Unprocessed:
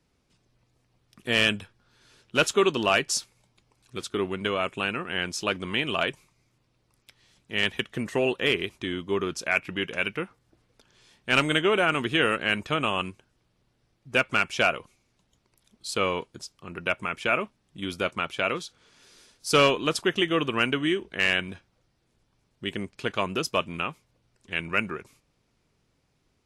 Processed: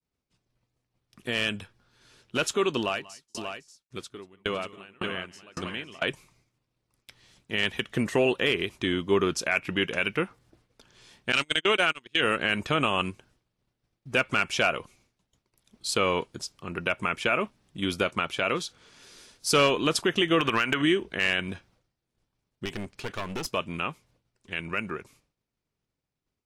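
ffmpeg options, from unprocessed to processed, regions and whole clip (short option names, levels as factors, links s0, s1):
-filter_complex "[0:a]asettb=1/sr,asplit=3[s0][s1][s2];[s0]atrim=end=2.794[s3];[s1]atrim=start=2.79:end=6.02,asetpts=PTS-STARTPTS,afade=t=in:d=0.004:c=qsin,afade=t=out:st=3.226:d=0.004:c=qsin,aecho=1:1:187|188|506|586:0.282|0.126|0.112|0.473,atrim=end_sample=142443,aeval=exprs='val(0)*pow(10,-34*if(lt(mod(1.8*n/s,1),2*abs(1.8)/1000),1-mod(1.8*n/s,1)/(2*abs(1.8)/1000),(mod(1.8*n/s,1)-2*abs(1.8)/1000)/(1-2*abs(1.8)/1000))/20)':c=same[s4];[s2]atrim=start=6.016[s5];[s3][s4]acrossfade=d=0.004:c1=hsin:c2=qsin[s6];[s6][s5]acrossfade=d=0.004:c1=qsin:c2=hsin,asettb=1/sr,asplit=3[s7][s8][s9];[s7]atrim=end=11.324[s10];[s8]atrim=start=11.32:end=12.21,asetpts=PTS-STARTPTS,afade=t=in:d=0.004:c=qsin,afade=t=out:st=0.886:d=0.004:c=qsin,agate=range=0.0112:threshold=0.0708:ratio=16:release=100:detection=peak,equalizer=f=4900:t=o:w=2.8:g=12[s11];[s9]atrim=start=12.206[s12];[s10][s11]acrossfade=d=0.004:c1=hsin:c2=qsin[s13];[s13][s12]acrossfade=d=0.004:c1=qsin:c2=hsin,asettb=1/sr,asplit=3[s14][s15][s16];[s14]atrim=end=20.394[s17];[s15]atrim=start=20.39:end=20.82,asetpts=PTS-STARTPTS,afade=t=in:d=0.004:c=qsin,afade=t=out:st=0.426:d=0.004:c=qsin,equalizer=f=1700:t=o:w=2.1:g=11,acompressor=threshold=0.0708:ratio=12:attack=3.2:release=140:knee=1:detection=peak,asoftclip=type=hard:threshold=0.112[s18];[s16]atrim=start=20.816[s19];[s17][s18]acrossfade=d=0.004:c1=hsin:c2=qsin[s20];[s20][s19]acrossfade=d=0.004:c1=qsin:c2=hsin,asettb=1/sr,asplit=3[s21][s22][s23];[s21]atrim=end=22.654[s24];[s22]atrim=start=22.65:end=23.46,asetpts=PTS-STARTPTS,afade=t=in:d=0.004:c=qsin,afade=t=out:st=0.806:d=0.004:c=qsin,acompressor=threshold=0.0355:ratio=2:attack=3.2:release=140:knee=1:detection=peak,aeval=exprs='clip(val(0),-1,0.0119)':c=same[s25];[s23]atrim=start=23.456[s26];[s24][s25]acrossfade=d=0.004:c1=hsin:c2=qsin[s27];[s27][s26]acrossfade=d=0.004:c1=qsin:c2=hsin,agate=range=0.0224:threshold=0.001:ratio=3:detection=peak,alimiter=limit=0.15:level=0:latency=1:release=103,dynaudnorm=f=790:g=11:m=1.58"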